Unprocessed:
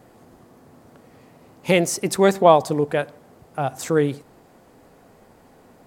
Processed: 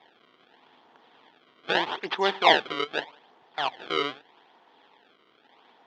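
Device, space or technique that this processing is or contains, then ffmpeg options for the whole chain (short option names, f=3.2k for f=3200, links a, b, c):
circuit-bent sampling toy: -af "acrusher=samples=29:mix=1:aa=0.000001:lfo=1:lforange=46.4:lforate=0.81,highpass=460,equalizer=f=560:t=q:w=4:g=-8,equalizer=f=910:t=q:w=4:g=8,equalizer=f=1.8k:t=q:w=4:g=4,equalizer=f=3.3k:t=q:w=4:g=10,lowpass=f=4.2k:w=0.5412,lowpass=f=4.2k:w=1.3066,volume=-5dB"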